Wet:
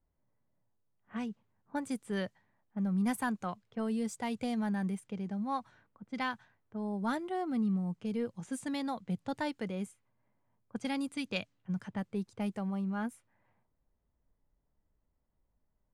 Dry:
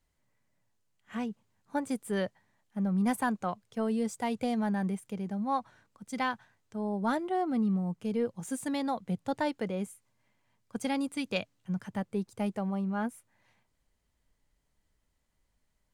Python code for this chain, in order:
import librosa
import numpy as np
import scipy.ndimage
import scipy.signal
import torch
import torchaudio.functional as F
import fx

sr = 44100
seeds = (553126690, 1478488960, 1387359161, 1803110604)

y = fx.env_lowpass(x, sr, base_hz=1000.0, full_db=-29.0)
y = fx.dynamic_eq(y, sr, hz=590.0, q=0.83, threshold_db=-41.0, ratio=4.0, max_db=-5)
y = y * 10.0 ** (-1.5 / 20.0)